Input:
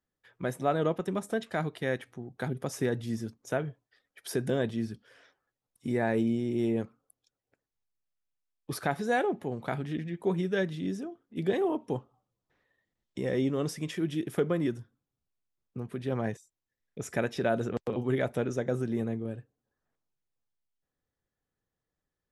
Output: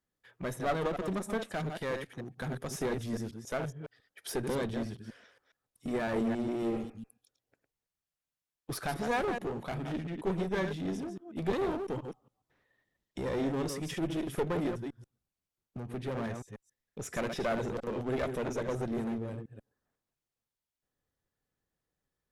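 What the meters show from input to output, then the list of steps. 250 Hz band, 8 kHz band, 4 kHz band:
-3.5 dB, 0.0 dB, -0.5 dB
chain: chunks repeated in reverse 138 ms, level -8 dB; one-sided clip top -35.5 dBFS; spectral replace 6.77–7.18 s, 320–2700 Hz both

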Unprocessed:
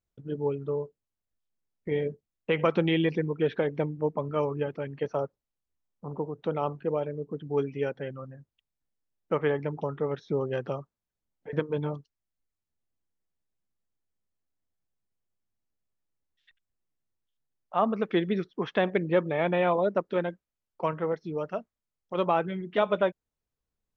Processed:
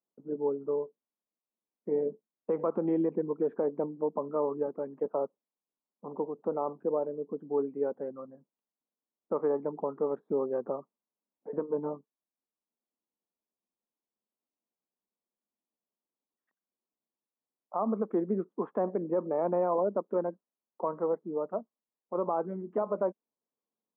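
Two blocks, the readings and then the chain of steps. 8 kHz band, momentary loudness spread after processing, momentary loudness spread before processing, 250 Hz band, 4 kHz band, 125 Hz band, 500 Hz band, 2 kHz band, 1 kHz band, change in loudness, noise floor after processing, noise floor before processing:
no reading, 9 LU, 12 LU, -3.0 dB, under -35 dB, -12.0 dB, -2.0 dB, under -20 dB, -4.0 dB, -3.0 dB, under -85 dBFS, under -85 dBFS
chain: elliptic band-pass 210–1100 Hz, stop band 80 dB; peak limiter -20 dBFS, peak gain reduction 7 dB

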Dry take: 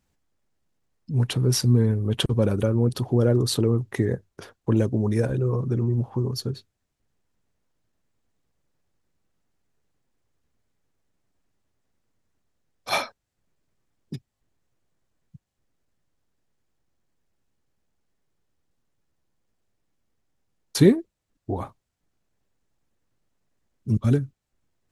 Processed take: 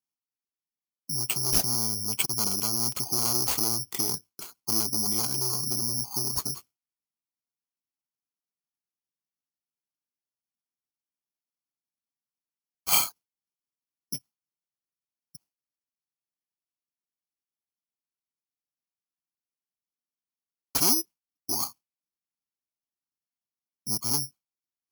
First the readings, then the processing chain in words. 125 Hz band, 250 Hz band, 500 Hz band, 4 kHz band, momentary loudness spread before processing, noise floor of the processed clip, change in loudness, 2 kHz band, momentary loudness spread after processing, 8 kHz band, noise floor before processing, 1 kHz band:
-18.0 dB, -13.5 dB, -16.0 dB, +3.5 dB, 18 LU, under -85 dBFS, -1.5 dB, -4.5 dB, 15 LU, +11.0 dB, -80 dBFS, -0.5 dB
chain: gate with hold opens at -43 dBFS; bass shelf 410 Hz +5.5 dB; saturation -19.5 dBFS, distortion -7 dB; band-pass 300–8000 Hz; static phaser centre 2.6 kHz, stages 8; careless resampling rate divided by 8×, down none, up zero stuff; trim -1 dB

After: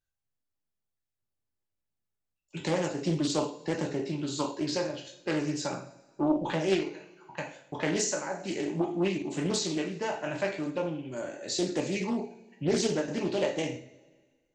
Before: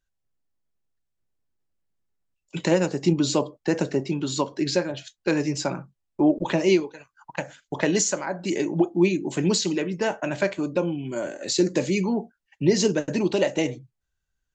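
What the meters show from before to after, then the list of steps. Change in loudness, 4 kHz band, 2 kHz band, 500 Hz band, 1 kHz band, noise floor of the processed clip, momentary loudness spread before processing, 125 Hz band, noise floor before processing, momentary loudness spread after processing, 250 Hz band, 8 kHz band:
-7.0 dB, -5.5 dB, -6.0 dB, -6.5 dB, -3.5 dB, -85 dBFS, 10 LU, -7.0 dB, -80 dBFS, 10 LU, -7.0 dB, -6.5 dB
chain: spectral sustain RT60 0.31 s; two-slope reverb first 0.44 s, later 1.6 s, from -18 dB, DRR 2.5 dB; loudspeaker Doppler distortion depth 0.36 ms; trim -9 dB

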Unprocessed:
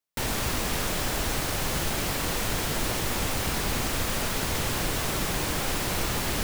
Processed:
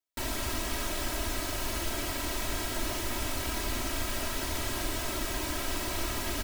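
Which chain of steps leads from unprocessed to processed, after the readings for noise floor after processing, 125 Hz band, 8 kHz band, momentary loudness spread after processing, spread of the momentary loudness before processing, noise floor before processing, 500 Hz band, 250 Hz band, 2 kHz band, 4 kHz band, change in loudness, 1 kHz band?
-35 dBFS, -7.5 dB, -5.0 dB, 0 LU, 0 LU, -29 dBFS, -5.0 dB, -5.0 dB, -5.5 dB, -5.0 dB, -5.0 dB, -5.5 dB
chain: comb 3.1 ms, depth 100%; trim -8 dB

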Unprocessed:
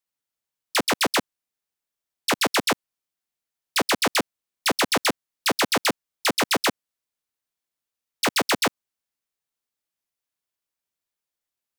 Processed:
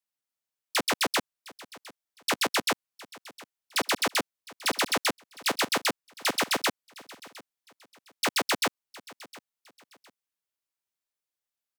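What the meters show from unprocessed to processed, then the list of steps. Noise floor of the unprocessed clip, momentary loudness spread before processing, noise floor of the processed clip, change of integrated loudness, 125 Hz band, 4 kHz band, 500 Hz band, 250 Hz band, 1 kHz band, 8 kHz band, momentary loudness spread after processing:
under -85 dBFS, 5 LU, under -85 dBFS, -4.5 dB, -8.0 dB, -4.0 dB, -6.0 dB, -7.0 dB, -4.5 dB, -4.0 dB, 21 LU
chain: bass shelf 420 Hz -4.5 dB; on a send: feedback delay 710 ms, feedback 29%, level -20.5 dB; on the sum: trim -4 dB

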